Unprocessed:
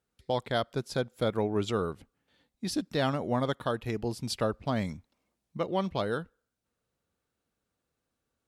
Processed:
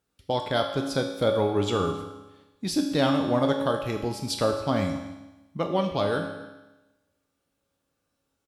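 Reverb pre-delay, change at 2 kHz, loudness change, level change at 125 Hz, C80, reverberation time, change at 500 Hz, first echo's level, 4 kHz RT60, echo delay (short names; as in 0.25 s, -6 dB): 4 ms, +4.0 dB, +5.0 dB, +3.5 dB, 7.5 dB, 1.1 s, +5.5 dB, -20.5 dB, 1.1 s, 0.27 s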